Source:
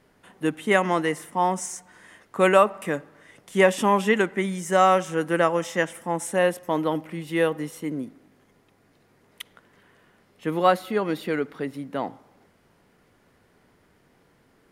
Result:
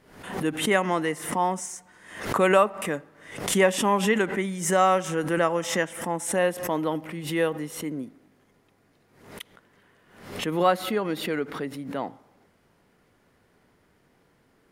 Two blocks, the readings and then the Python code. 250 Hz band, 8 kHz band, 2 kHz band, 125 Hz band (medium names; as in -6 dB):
-1.0 dB, +4.0 dB, -1.5 dB, -0.5 dB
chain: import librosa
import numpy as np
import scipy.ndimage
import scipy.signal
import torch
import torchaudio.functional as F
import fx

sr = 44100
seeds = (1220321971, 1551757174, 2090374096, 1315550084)

y = fx.pre_swell(x, sr, db_per_s=84.0)
y = y * librosa.db_to_amplitude(-2.5)